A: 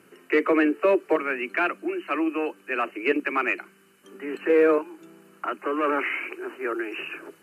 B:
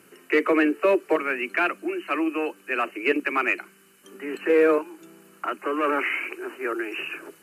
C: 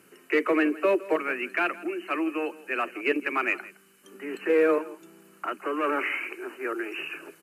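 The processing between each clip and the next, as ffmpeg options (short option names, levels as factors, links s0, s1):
-af "highshelf=f=3700:g=7.5"
-af "aecho=1:1:164:0.112,volume=0.708"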